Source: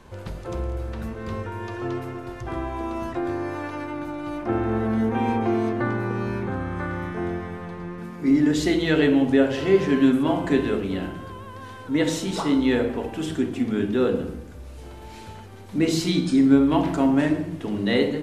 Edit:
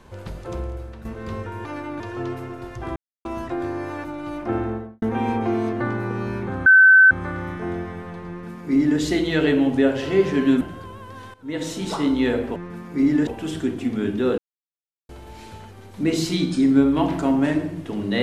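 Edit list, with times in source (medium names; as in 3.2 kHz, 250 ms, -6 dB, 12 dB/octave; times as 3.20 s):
0.56–1.05 s: fade out, to -10 dB
2.61–2.90 s: mute
3.69–4.04 s: move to 1.65 s
4.55–5.02 s: studio fade out
6.66 s: add tone 1.53 kHz -7.5 dBFS 0.45 s
7.84–8.55 s: copy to 13.02 s
10.16–11.07 s: delete
11.80–12.33 s: fade in, from -18 dB
14.13–14.84 s: mute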